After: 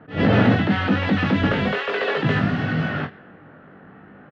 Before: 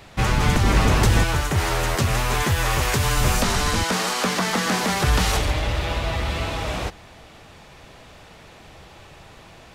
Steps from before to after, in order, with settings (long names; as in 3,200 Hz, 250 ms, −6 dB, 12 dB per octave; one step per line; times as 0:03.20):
change of speed 2.26×
low-pass that shuts in the quiet parts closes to 1,300 Hz, open at −17 dBFS
loudspeaker in its box 140–2,600 Hz, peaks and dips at 180 Hz +3 dB, 360 Hz −4 dB, 1,000 Hz −10 dB, 2,300 Hz −9 dB
on a send: ambience of single reflections 20 ms −3.5 dB, 45 ms −11 dB
on the sum: level that may rise only so fast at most 190 dB per second
level +3 dB